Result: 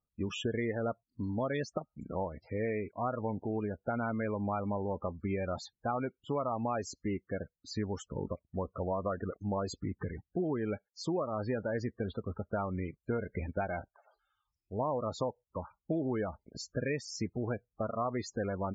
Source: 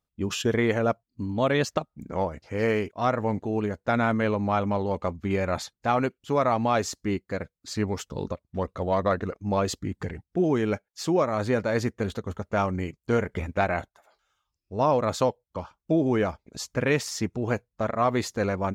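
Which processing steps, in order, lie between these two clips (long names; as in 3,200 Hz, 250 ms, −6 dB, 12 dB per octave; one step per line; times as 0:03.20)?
downward compressor 3 to 1, threshold −27 dBFS, peak gain reduction 7.5 dB
spectral peaks only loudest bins 32
level −4 dB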